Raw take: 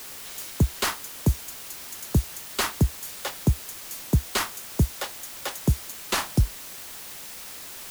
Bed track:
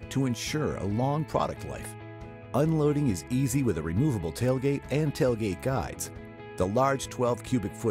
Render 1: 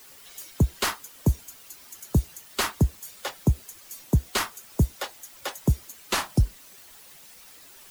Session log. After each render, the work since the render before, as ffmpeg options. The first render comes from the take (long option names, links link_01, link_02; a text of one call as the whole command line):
ffmpeg -i in.wav -af "afftdn=noise_reduction=11:noise_floor=-40" out.wav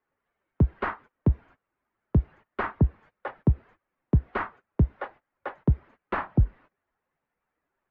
ffmpeg -i in.wav -af "lowpass=frequency=1800:width=0.5412,lowpass=frequency=1800:width=1.3066,agate=range=-23dB:threshold=-47dB:ratio=16:detection=peak" out.wav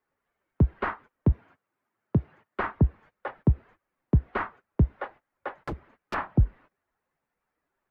ffmpeg -i in.wav -filter_complex "[0:a]asettb=1/sr,asplit=3[link_01][link_02][link_03];[link_01]atrim=end=1.324[link_04];[link_02]atrim=start=1.32:end=2.6,asetpts=PTS-STARTPTS,afade=type=in:duration=0.004:curve=qsin,afade=type=out:start_time=1.276:duration=0.004:curve=qsin,highpass=frequency=93:width=0.5412,highpass=frequency=93:width=1.3066[link_05];[link_03]atrim=start=2.596[link_06];[link_04][link_05]acrossfade=duration=0.004:curve1=hsin:curve2=qsin[link_07];[link_07][link_06]acrossfade=duration=0.004:curve1=qsin:curve2=hsin,asplit=3[link_08][link_09][link_10];[link_08]afade=type=out:start_time=5.55:duration=0.02[link_11];[link_09]aeval=exprs='0.0473*(abs(mod(val(0)/0.0473+3,4)-2)-1)':channel_layout=same,afade=type=in:start_time=5.55:duration=0.02,afade=type=out:start_time=6.13:duration=0.02[link_12];[link_10]afade=type=in:start_time=6.13:duration=0.02[link_13];[link_11][link_12][link_13]amix=inputs=3:normalize=0" out.wav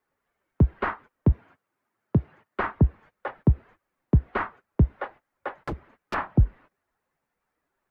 ffmpeg -i in.wav -af "volume=2dB" out.wav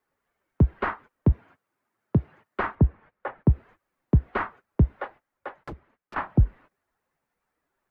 ffmpeg -i in.wav -filter_complex "[0:a]asettb=1/sr,asplit=3[link_01][link_02][link_03];[link_01]atrim=end=2.754[link_04];[link_02]atrim=start=2.75:end=3.51,asetpts=PTS-STARTPTS,afade=type=in:duration=0.004:curve=qsin,afade=type=out:start_time=0.756:duration=0.004:curve=qsin,lowpass=2600[link_05];[link_03]atrim=start=3.506[link_06];[link_04][link_05]acrossfade=duration=0.004:curve1=hsin:curve2=qsin[link_07];[link_07][link_06]acrossfade=duration=0.004:curve1=qsin:curve2=hsin,asplit=2[link_08][link_09];[link_08]atrim=end=6.16,asetpts=PTS-STARTPTS,afade=type=out:start_time=4.9:duration=1.26:silence=0.188365[link_10];[link_09]atrim=start=6.16,asetpts=PTS-STARTPTS,afade=type=in:duration=0.004:curve=hsin:silence=0.188365[link_11];[link_10][link_11]concat=n=2:v=0:a=1" out.wav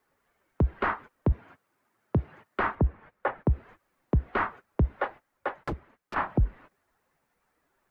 ffmpeg -i in.wav -filter_complex "[0:a]asplit=2[link_01][link_02];[link_02]acompressor=threshold=-28dB:ratio=6,volume=-0.5dB[link_03];[link_01][link_03]amix=inputs=2:normalize=0,alimiter=limit=-16.5dB:level=0:latency=1:release=24" out.wav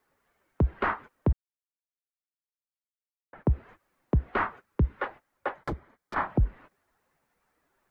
ffmpeg -i in.wav -filter_complex "[0:a]asettb=1/sr,asplit=3[link_01][link_02][link_03];[link_01]atrim=end=4.654[link_04];[link_02]atrim=start=4.65:end=5.07,asetpts=PTS-STARTPTS,afade=type=in:duration=0.004:curve=qsin,afade=type=out:start_time=0.416:duration=0.004:curve=qsin,equalizer=frequency=680:width_type=o:width=0.42:gain=-12[link_05];[link_03]atrim=start=5.066[link_06];[link_04][link_05]acrossfade=duration=0.004:curve1=hsin:curve2=qsin[link_07];[link_07][link_06]acrossfade=duration=0.004:curve1=qsin:curve2=hsin,asettb=1/sr,asplit=3[link_08][link_09][link_10];[link_08]atrim=end=5.584[link_11];[link_09]atrim=start=5.58:end=6.25,asetpts=PTS-STARTPTS,afade=type=in:duration=0.004:curve=qsin,afade=type=out:start_time=0.666:duration=0.004:curve=qsin,bandreject=frequency=2700:width=5.5[link_12];[link_10]atrim=start=6.246[link_13];[link_11][link_12]acrossfade=duration=0.004:curve1=hsin:curve2=qsin[link_14];[link_14][link_13]acrossfade=duration=0.004:curve1=qsin:curve2=hsin,asplit=3[link_15][link_16][link_17];[link_15]atrim=end=1.33,asetpts=PTS-STARTPTS,afade=type=out:start_time=1.326:duration=0.004:curve=hsin[link_18];[link_16]atrim=start=1.33:end=3.33,asetpts=PTS-STARTPTS,volume=0[link_19];[link_17]atrim=start=3.33,asetpts=PTS-STARTPTS,afade=type=in:duration=0.004:curve=hsin[link_20];[link_18][link_19][link_20]concat=n=3:v=0:a=1" out.wav